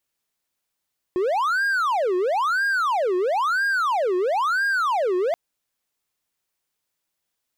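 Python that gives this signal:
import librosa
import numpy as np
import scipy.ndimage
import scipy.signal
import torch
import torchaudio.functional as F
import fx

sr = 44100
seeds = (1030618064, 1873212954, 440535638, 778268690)

y = fx.siren(sr, length_s=4.18, kind='wail', low_hz=359.0, high_hz=1620.0, per_s=1.0, wave='triangle', level_db=-17.0)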